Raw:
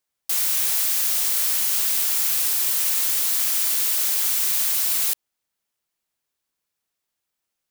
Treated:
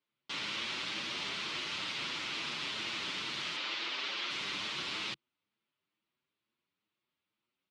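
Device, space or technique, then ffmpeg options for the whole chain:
barber-pole flanger into a guitar amplifier: -filter_complex "[0:a]asettb=1/sr,asplit=3[a][b][c];[a]atrim=end=3.564[d];[b]atrim=start=3.56:end=4.3,asetpts=PTS-STARTPTS,afade=t=in:d=0.004:c=qsin,afade=t=out:st=0.736:d=0.004:c=qsin,acrossover=split=260 6100:gain=0.178 1 0.141[e][f][g];[e][f][g]amix=inputs=3:normalize=0[h];[c]atrim=start=4.296[i];[d][h]acrossfade=d=0.004:c1=hsin:c2=qsin[j];[j][i]acrossfade=d=0.004:c1=qsin:c2=hsin,asplit=2[k][l];[l]adelay=7.2,afreqshift=2.2[m];[k][m]amix=inputs=2:normalize=1,asoftclip=type=tanh:threshold=-19dB,highpass=98,equalizer=f=140:t=q:w=4:g=4,equalizer=f=210:t=q:w=4:g=4,equalizer=f=330:t=q:w=4:g=5,equalizer=f=490:t=q:w=4:g=-5,equalizer=f=740:t=q:w=4:g=-9,equalizer=f=1.7k:t=q:w=4:g=-6,lowpass=f=3.6k:w=0.5412,lowpass=f=3.6k:w=1.3066,volume=4dB"

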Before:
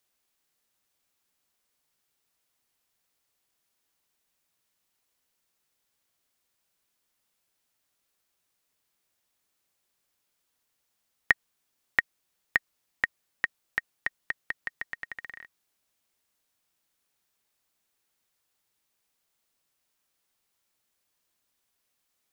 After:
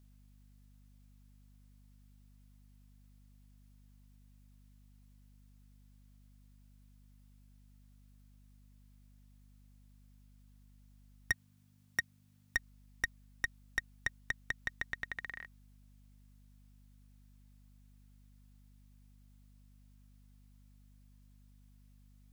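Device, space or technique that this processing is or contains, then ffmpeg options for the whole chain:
valve amplifier with mains hum: -filter_complex "[0:a]aeval=exprs='(tanh(15.8*val(0)+0.45)-tanh(0.45))/15.8':c=same,aeval=exprs='val(0)+0.000891*(sin(2*PI*50*n/s)+sin(2*PI*2*50*n/s)/2+sin(2*PI*3*50*n/s)/3+sin(2*PI*4*50*n/s)/4+sin(2*PI*5*50*n/s)/5)':c=same,asettb=1/sr,asplit=3[a][b][c];[a]atrim=end=11.314[d];[b]atrim=start=11.31:end=12.56,asetpts=PTS-STARTPTS,afade=t=in:d=0.004:c=qsin,afade=t=out:st=1.246:d=0.004:c=qsin,highpass=f=84:w=0.5412,highpass=f=84:w=1.3066[e];[c]atrim=start=12.556[f];[d][e]acrossfade=d=0.004:c1=hsin:c2=qsin[g];[g][f]acrossfade=d=0.004:c1=qsin:c2=hsin,volume=1dB"

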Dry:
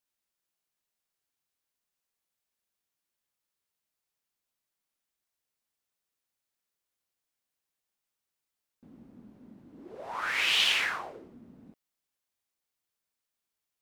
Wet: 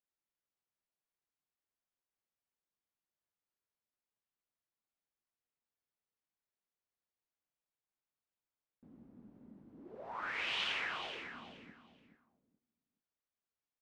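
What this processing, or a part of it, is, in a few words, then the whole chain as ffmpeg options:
through cloth: -af "lowpass=7k,highshelf=f=2.9k:g=-13,aecho=1:1:425|850|1275:0.355|0.0781|0.0172,volume=-5.5dB"

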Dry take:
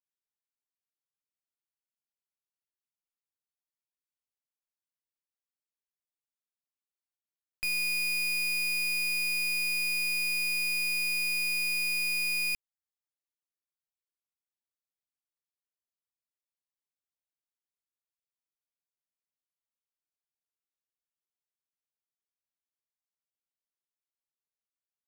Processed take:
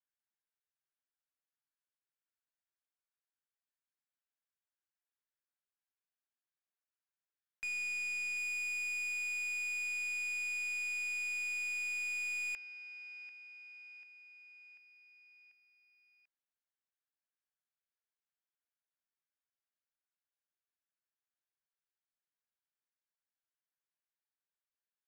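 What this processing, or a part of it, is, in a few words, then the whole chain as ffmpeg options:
megaphone: -af "highpass=510,lowpass=3.5k,lowpass=7.3k,equalizer=f=1.6k:t=o:w=0.44:g=8,aecho=1:1:741|1482|2223|2964|3705:0.158|0.0903|0.0515|0.0294|0.0167,asoftclip=type=hard:threshold=-32.5dB,volume=-4dB"

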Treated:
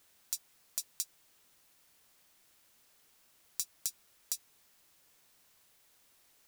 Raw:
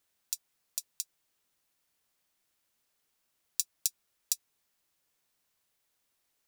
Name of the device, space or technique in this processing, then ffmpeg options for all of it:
de-esser from a sidechain: -filter_complex "[0:a]asplit=2[a][b];[b]highpass=f=6k:p=1,apad=whole_len=285543[c];[a][c]sidechaincompress=threshold=-35dB:ratio=8:attack=1.1:release=21,volume=11dB"

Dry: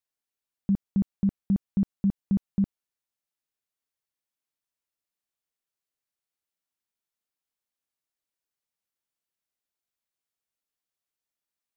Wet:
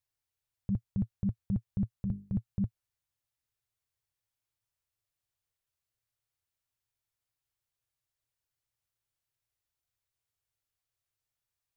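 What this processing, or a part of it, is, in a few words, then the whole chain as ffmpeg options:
car stereo with a boomy subwoofer: -filter_complex "[0:a]lowshelf=f=150:t=q:w=3:g=9.5,alimiter=limit=-23dB:level=0:latency=1:release=33,asettb=1/sr,asplit=3[a][b][c];[a]atrim=end=1.924[d];[b]atrim=start=1.92:end=2.35,asetpts=PTS-STARTPTS,afade=t=in:d=0.004:c=qsin,afade=t=out:st=0.426:d=0.004:c=qsin,bandreject=f=50:t=h:w=6,bandreject=f=100:t=h:w=6,bandreject=f=150:t=h:w=6,bandreject=f=200:t=h:w=6,bandreject=f=250:t=h:w=6,bandreject=f=300:t=h:w=6,bandreject=f=350:t=h:w=6,bandreject=f=400:t=h:w=6,bandreject=f=450:t=h:w=6[e];[c]atrim=start=2.346[f];[d][e]acrossfade=d=0.004:c1=hsin:c2=qsin[g];[g][f]acrossfade=d=0.004:c1=qsin:c2=hsin"

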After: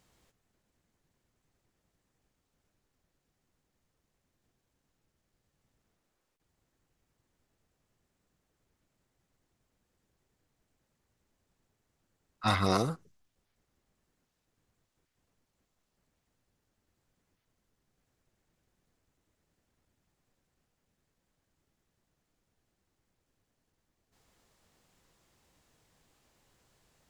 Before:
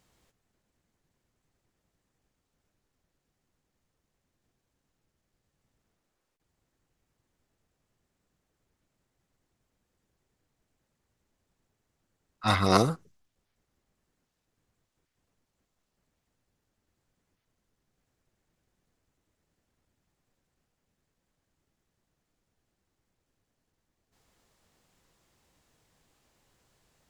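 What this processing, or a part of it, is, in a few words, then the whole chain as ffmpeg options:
soft clipper into limiter: -af "asoftclip=type=tanh:threshold=-8dB,alimiter=limit=-16dB:level=0:latency=1:release=497"

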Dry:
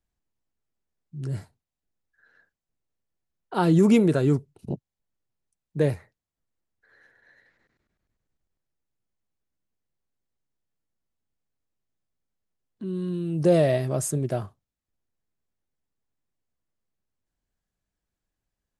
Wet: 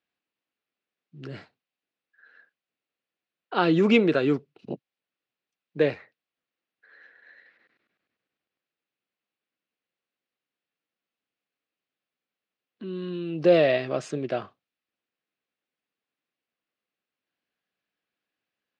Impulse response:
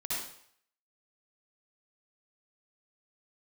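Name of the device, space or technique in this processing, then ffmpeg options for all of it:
phone earpiece: -af "highpass=350,equalizer=f=390:t=q:w=4:g=-4,equalizer=f=630:t=q:w=4:g=-4,equalizer=f=910:t=q:w=4:g=-7,equalizer=f=2.6k:t=q:w=4:g=5,lowpass=f=4.3k:w=0.5412,lowpass=f=4.3k:w=1.3066,volume=5.5dB"

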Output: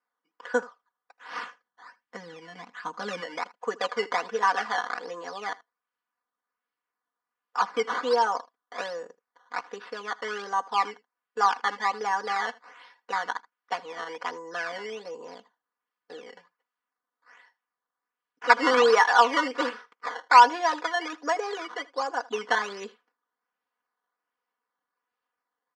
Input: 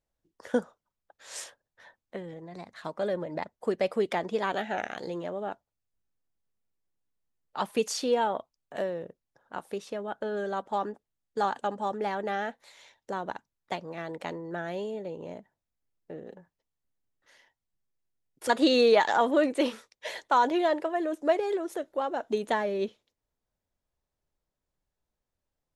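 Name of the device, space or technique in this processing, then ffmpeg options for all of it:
circuit-bent sampling toy: -filter_complex "[0:a]acrusher=samples=12:mix=1:aa=0.000001:lfo=1:lforange=12:lforate=1.3,highpass=540,equalizer=f=610:t=q:w=4:g=-9,equalizer=f=1.1k:t=q:w=4:g=8,equalizer=f=1.6k:t=q:w=4:g=4,equalizer=f=2.5k:t=q:w=4:g=-4,equalizer=f=3.8k:t=q:w=4:g=-9,lowpass=f=4.8k:w=0.5412,lowpass=f=4.8k:w=1.3066,asplit=3[a][b][c];[a]afade=t=out:st=1.35:d=0.02[d];[b]asubboost=boost=6:cutoff=230,afade=t=in:st=1.35:d=0.02,afade=t=out:st=3.2:d=0.02[e];[c]afade=t=in:st=3.2:d=0.02[f];[d][e][f]amix=inputs=3:normalize=0,highshelf=f=9.6k:g=9,aecho=1:1:4.1:0.97,aecho=1:1:79:0.0794,volume=2dB"

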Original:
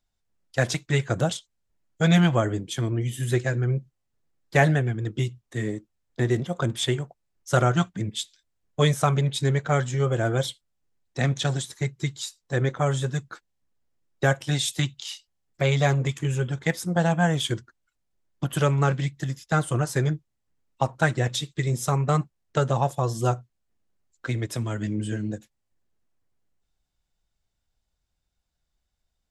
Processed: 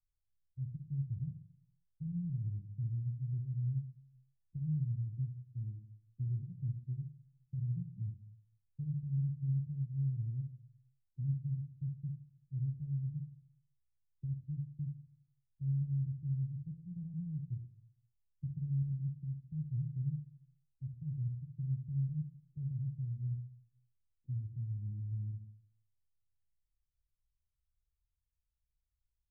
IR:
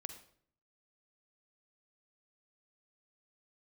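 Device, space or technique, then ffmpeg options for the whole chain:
club heard from the street: -filter_complex "[0:a]alimiter=limit=-13.5dB:level=0:latency=1,lowpass=f=130:w=0.5412,lowpass=f=130:w=1.3066[a];[1:a]atrim=start_sample=2205[b];[a][b]afir=irnorm=-1:irlink=0,volume=-3.5dB"

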